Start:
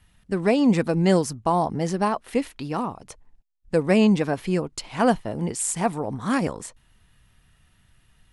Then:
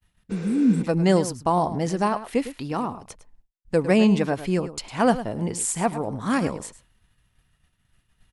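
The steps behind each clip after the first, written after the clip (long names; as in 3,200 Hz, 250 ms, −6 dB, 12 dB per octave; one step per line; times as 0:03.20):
slap from a distant wall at 18 metres, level −13 dB
healed spectral selection 0:00.33–0:00.79, 320–7,500 Hz after
downward expander −51 dBFS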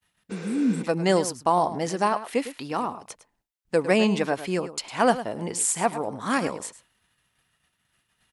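high-pass filter 440 Hz 6 dB per octave
level +2 dB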